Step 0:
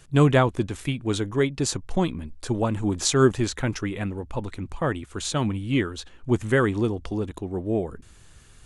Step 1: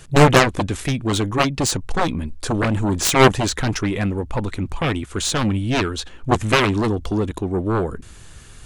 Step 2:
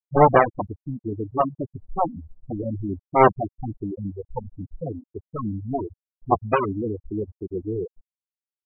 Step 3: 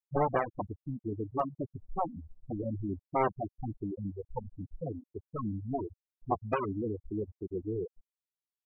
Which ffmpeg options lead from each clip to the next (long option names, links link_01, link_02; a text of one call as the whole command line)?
ffmpeg -i in.wav -af "aeval=exprs='0.531*(cos(1*acos(clip(val(0)/0.531,-1,1)))-cos(1*PI/2))+0.211*(cos(7*acos(clip(val(0)/0.531,-1,1)))-cos(7*PI/2))':channel_layout=same,volume=4dB" out.wav
ffmpeg -i in.wav -af "afftfilt=real='re*gte(hypot(re,im),0.447)':imag='im*gte(hypot(re,im),0.447)':win_size=1024:overlap=0.75,equalizer=frequency=790:width=0.74:gain=13,volume=-9.5dB" out.wav
ffmpeg -i in.wav -af "acompressor=threshold=-21dB:ratio=2.5,aeval=exprs='0.316*(cos(1*acos(clip(val(0)/0.316,-1,1)))-cos(1*PI/2))+0.002*(cos(3*acos(clip(val(0)/0.316,-1,1)))-cos(3*PI/2))':channel_layout=same,volume=-6.5dB" out.wav